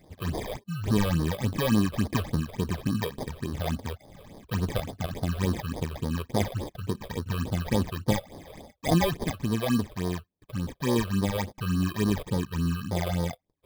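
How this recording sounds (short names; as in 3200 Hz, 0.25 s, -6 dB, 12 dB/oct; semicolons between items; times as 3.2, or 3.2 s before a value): aliases and images of a low sample rate 1400 Hz, jitter 0%; phasing stages 8, 3.5 Hz, lowest notch 240–2600 Hz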